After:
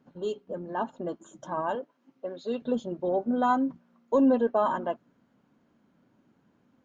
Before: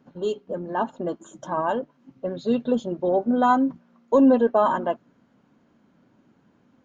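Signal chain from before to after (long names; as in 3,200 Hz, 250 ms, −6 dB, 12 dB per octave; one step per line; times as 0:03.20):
0:01.75–0:02.62: high-pass filter 320 Hz 12 dB per octave
level −5.5 dB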